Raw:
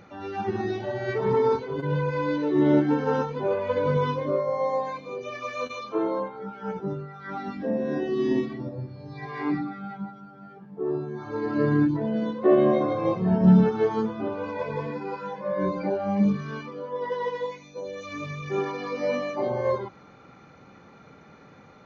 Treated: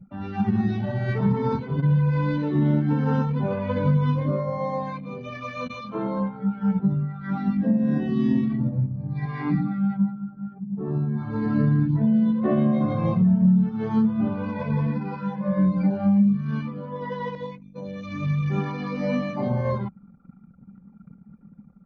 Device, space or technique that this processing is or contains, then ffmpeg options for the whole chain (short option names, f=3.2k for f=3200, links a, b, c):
jukebox: -filter_complex "[0:a]asettb=1/sr,asplit=3[a][b][c];[a]atrim=end=17.354[d];[b]atrim=start=17.35:end=18.16,asetpts=PTS-STARTPTS,afade=t=in:d=0.004:c=qsin,afade=t=out:st=0.806:d=0.004:c=qsin,adynamicequalizer=threshold=0.00447:dfrequency=1500:dqfactor=0.92:tfrequency=1500:tqfactor=0.92:attack=5:release=100:ratio=0.375:range=2:mode=cutabove:tftype=bell[e];[c]atrim=start=18.156[f];[d][e]acrossfade=d=0.004:c1=hsin:c2=qsin[g];[g][f]acrossfade=d=0.004:c1=qsin:c2=hsin,anlmdn=0.1,lowpass=5k,lowshelf=f=270:t=q:w=3:g=9.5,acompressor=threshold=-17dB:ratio=6"